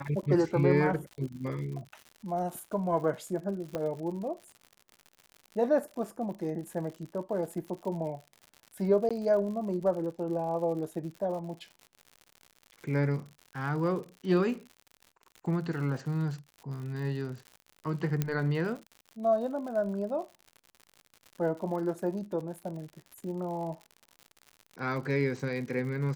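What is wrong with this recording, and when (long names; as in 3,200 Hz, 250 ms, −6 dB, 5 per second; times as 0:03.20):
surface crackle 95 per second −40 dBFS
0:03.75: click −20 dBFS
0:09.09–0:09.11: drop-out 16 ms
0:18.22: click −15 dBFS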